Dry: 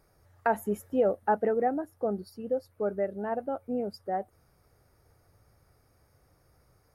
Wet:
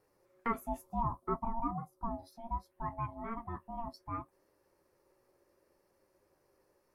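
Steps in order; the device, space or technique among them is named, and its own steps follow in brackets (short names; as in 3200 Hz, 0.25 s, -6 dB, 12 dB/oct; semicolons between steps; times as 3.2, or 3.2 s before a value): 0.81–2.11 band shelf 1800 Hz -13.5 dB; alien voice (ring modulator 460 Hz; flange 0.67 Hz, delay 9.2 ms, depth 7.3 ms, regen -36%); gain -1.5 dB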